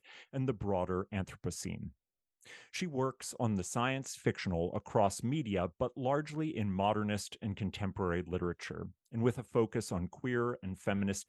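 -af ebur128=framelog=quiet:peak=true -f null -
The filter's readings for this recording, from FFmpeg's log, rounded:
Integrated loudness:
  I:         -36.0 LUFS
  Threshold: -46.2 LUFS
Loudness range:
  LRA:         3.7 LU
  Threshold: -56.0 LUFS
  LRA low:   -38.4 LUFS
  LRA high:  -34.7 LUFS
True peak:
  Peak:      -15.3 dBFS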